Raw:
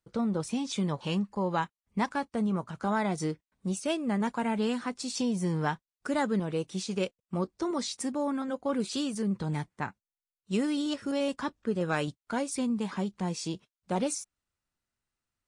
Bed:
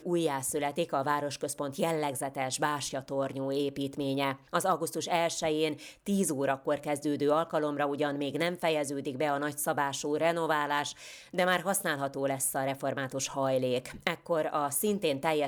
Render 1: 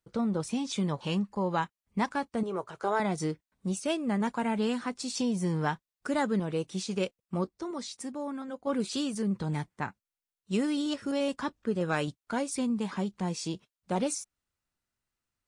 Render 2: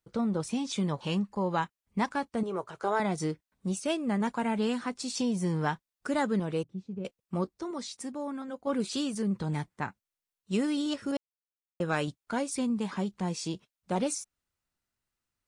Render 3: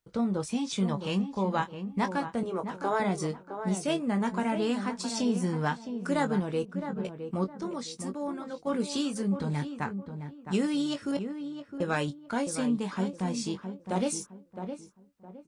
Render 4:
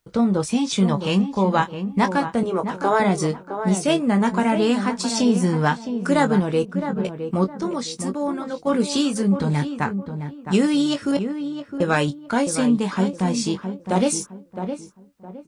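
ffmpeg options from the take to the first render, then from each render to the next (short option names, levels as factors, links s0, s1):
-filter_complex "[0:a]asettb=1/sr,asplit=3[s0][s1][s2];[s0]atrim=end=2.434[s3];[s1]atrim=start=2.43:end=3,asetpts=PTS-STARTPTS,afade=t=in:d=0.004:c=qsin,afade=t=out:st=0.566:d=0.004:c=qsin,lowshelf=f=310:t=q:w=3:g=-8[s4];[s2]atrim=start=2.996[s5];[s3][s4]acrossfade=d=0.004:c1=hsin:c2=qsin[s6];[s6][s5]acrossfade=d=0.004:c1=qsin:c2=hsin,asplit=3[s7][s8][s9];[s7]atrim=end=7.492[s10];[s8]atrim=start=7.488:end=8.672,asetpts=PTS-STARTPTS,volume=0.531[s11];[s9]atrim=start=8.668[s12];[s10][s11]acrossfade=d=0.004:c1=hsin:c2=hsin[s13];[s13][s12]acrossfade=d=0.004:c1=hsin:c2=hsin"
-filter_complex "[0:a]asettb=1/sr,asplit=3[s0][s1][s2];[s0]atrim=end=6.634[s3];[s1]atrim=start=6.63:end=7.05,asetpts=PTS-STARTPTS,afade=t=in:d=0.004:c=qsin,afade=t=out:st=0.416:d=0.004:c=qsin,bandpass=f=110:t=q:w=0.95[s4];[s2]atrim=start=7.046[s5];[s3][s4]acrossfade=d=0.004:c1=hsin:c2=qsin[s6];[s6][s5]acrossfade=d=0.004:c1=qsin:c2=hsin,asplit=3[s7][s8][s9];[s7]atrim=end=11.17,asetpts=PTS-STARTPTS,afade=t=out:st=11.166:d=0.004:c=hsin[s10];[s8]atrim=start=11.17:end=11.8,asetpts=PTS-STARTPTS,volume=0[s11];[s9]atrim=start=11.8,asetpts=PTS-STARTPTS,afade=t=in:d=0.004:c=hsin[s12];[s10][s11][s12]concat=n=3:v=0:a=1"
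-filter_complex "[0:a]asplit=2[s0][s1];[s1]adelay=21,volume=0.355[s2];[s0][s2]amix=inputs=2:normalize=0,asplit=2[s3][s4];[s4]adelay=663,lowpass=f=1400:p=1,volume=0.398,asplit=2[s5][s6];[s6]adelay=663,lowpass=f=1400:p=1,volume=0.31,asplit=2[s7][s8];[s8]adelay=663,lowpass=f=1400:p=1,volume=0.31,asplit=2[s9][s10];[s10]adelay=663,lowpass=f=1400:p=1,volume=0.31[s11];[s3][s5][s7][s9][s11]amix=inputs=5:normalize=0"
-af "volume=2.99"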